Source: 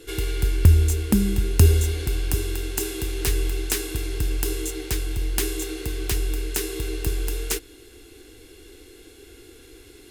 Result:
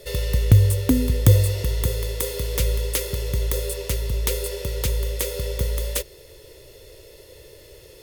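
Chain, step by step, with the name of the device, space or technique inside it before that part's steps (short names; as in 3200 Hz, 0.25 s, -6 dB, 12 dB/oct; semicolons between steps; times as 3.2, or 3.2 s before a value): nightcore (varispeed +26%); gain +1 dB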